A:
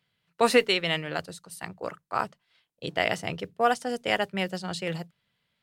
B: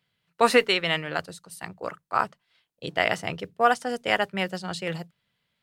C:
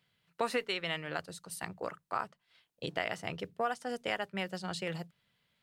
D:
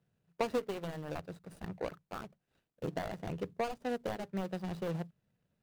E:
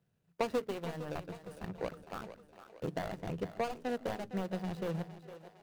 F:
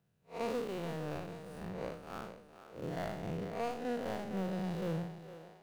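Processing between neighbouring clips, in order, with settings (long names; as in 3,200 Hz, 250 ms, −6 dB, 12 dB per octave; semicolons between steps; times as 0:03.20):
dynamic equaliser 1,300 Hz, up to +5 dB, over −37 dBFS, Q 0.87
downward compressor 2.5 to 1, threshold −36 dBFS, peak gain reduction 15.5 dB
running median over 41 samples; level +3.5 dB
echo with a time of its own for lows and highs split 310 Hz, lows 153 ms, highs 458 ms, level −12.5 dB
spectrum smeared in time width 129 ms; level +2.5 dB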